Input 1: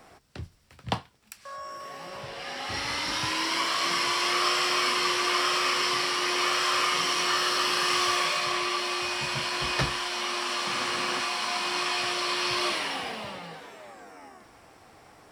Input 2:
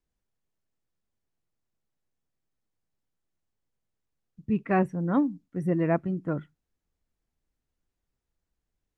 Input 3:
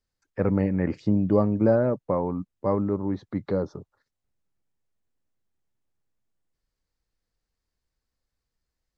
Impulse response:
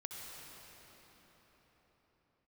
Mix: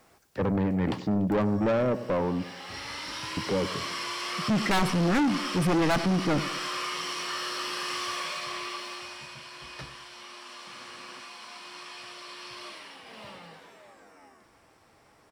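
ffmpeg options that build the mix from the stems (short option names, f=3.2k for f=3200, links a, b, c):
-filter_complex "[0:a]bandreject=f=740:w=13,volume=1.5dB,afade=t=out:st=8.64:d=0.73:silence=0.398107,afade=t=in:st=13.04:d=0.23:silence=0.375837,asplit=2[a][b];[b]volume=-15dB[c];[1:a]highpass=170,highshelf=f=4k:g=10.5,aeval=exprs='0.299*sin(PI/2*3.98*val(0)/0.299)':c=same,volume=-1.5dB,asplit=2[d][e];[e]volume=-18.5dB[f];[2:a]highpass=f=90:w=0.5412,highpass=f=90:w=1.3066,volume=2.5dB,asplit=3[g][h][i];[g]atrim=end=2.49,asetpts=PTS-STARTPTS,afade=t=out:st=2.486:d=0.004:c=hsin[j];[h]atrim=start=2.49:end=3.37,asetpts=PTS-STARTPTS,volume=0[k];[i]atrim=start=3.37,asetpts=PTS-STARTPTS,afade=t=in:d=0.004:c=hsin[l];[j][k][l]concat=n=3:v=0:a=1,asplit=2[m][n];[n]volume=-18dB[o];[c][f][o]amix=inputs=3:normalize=0,aecho=0:1:97|194|291|388|485|582|679|776:1|0.52|0.27|0.141|0.0731|0.038|0.0198|0.0103[p];[a][d][m][p]amix=inputs=4:normalize=0,asoftclip=type=tanh:threshold=-21.5dB"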